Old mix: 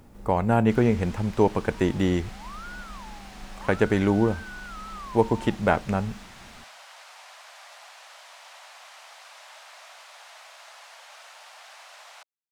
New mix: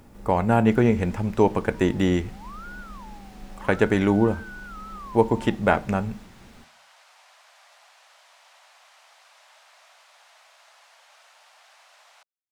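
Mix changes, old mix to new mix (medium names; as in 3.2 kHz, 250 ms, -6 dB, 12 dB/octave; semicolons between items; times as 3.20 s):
speech: send +8.0 dB; first sound -7.5 dB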